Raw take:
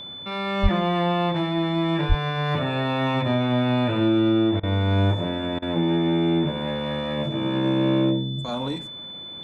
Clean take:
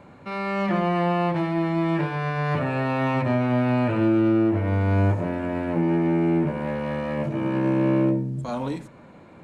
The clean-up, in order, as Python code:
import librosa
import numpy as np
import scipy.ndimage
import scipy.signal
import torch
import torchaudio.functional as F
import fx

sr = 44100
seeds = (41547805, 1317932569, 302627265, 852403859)

y = fx.notch(x, sr, hz=3500.0, q=30.0)
y = fx.highpass(y, sr, hz=140.0, slope=24, at=(0.62, 0.74), fade=0.02)
y = fx.highpass(y, sr, hz=140.0, slope=24, at=(2.08, 2.2), fade=0.02)
y = fx.fix_interpolate(y, sr, at_s=(4.6, 5.59), length_ms=31.0)